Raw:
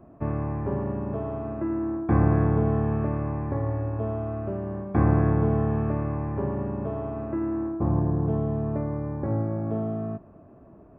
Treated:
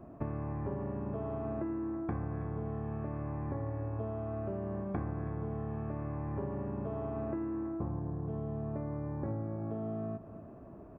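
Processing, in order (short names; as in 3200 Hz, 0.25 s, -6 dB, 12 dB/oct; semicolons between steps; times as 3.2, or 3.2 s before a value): compressor 12:1, threshold -33 dBFS, peak gain reduction 18.5 dB; echo 0.326 s -16 dB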